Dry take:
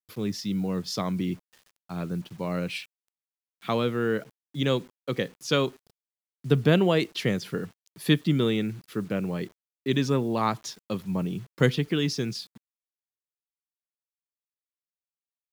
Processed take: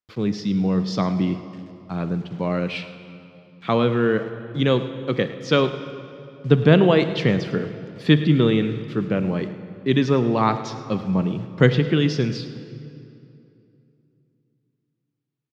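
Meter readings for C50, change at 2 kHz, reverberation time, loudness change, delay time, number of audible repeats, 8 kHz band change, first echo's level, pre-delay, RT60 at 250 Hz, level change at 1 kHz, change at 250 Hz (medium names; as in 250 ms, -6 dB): 10.0 dB, +5.5 dB, 2.8 s, +6.5 dB, 107 ms, 1, no reading, -16.5 dB, 20 ms, 3.2 s, +6.0 dB, +6.5 dB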